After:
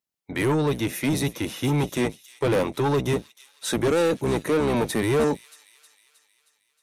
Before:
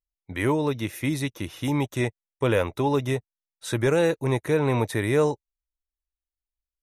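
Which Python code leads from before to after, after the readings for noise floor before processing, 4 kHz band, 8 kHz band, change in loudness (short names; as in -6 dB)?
under -85 dBFS, +3.5 dB, +5.0 dB, +1.0 dB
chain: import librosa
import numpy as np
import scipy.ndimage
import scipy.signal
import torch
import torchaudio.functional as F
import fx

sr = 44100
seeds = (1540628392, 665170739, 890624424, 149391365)

y = fx.octave_divider(x, sr, octaves=1, level_db=3.0)
y = scipy.signal.sosfilt(scipy.signal.butter(2, 200.0, 'highpass', fs=sr, output='sos'), y)
y = fx.dynamic_eq(y, sr, hz=1500.0, q=0.96, threshold_db=-38.0, ratio=4.0, max_db=-4)
y = 10.0 ** (-23.5 / 20.0) * np.tanh(y / 10.0 ** (-23.5 / 20.0))
y = fx.echo_wet_highpass(y, sr, ms=314, feedback_pct=56, hz=3500.0, wet_db=-12.0)
y = F.gain(torch.from_numpy(y), 6.5).numpy()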